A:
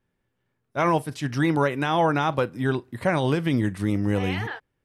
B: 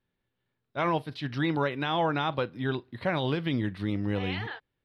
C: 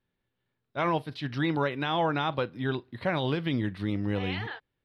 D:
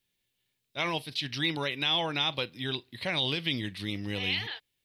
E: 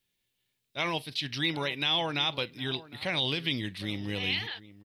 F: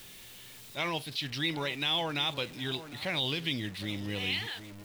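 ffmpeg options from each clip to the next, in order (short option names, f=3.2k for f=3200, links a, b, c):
-af "highshelf=f=5.4k:t=q:w=3:g=-11,volume=-6dB"
-af anull
-af "aexciter=amount=7.4:drive=2.5:freq=2.1k,volume=-6dB"
-filter_complex "[0:a]asplit=2[a][b];[b]adelay=758,volume=-17dB,highshelf=f=4k:g=-17.1[c];[a][c]amix=inputs=2:normalize=0"
-af "aeval=exprs='val(0)+0.5*0.00944*sgn(val(0))':c=same,volume=-3dB"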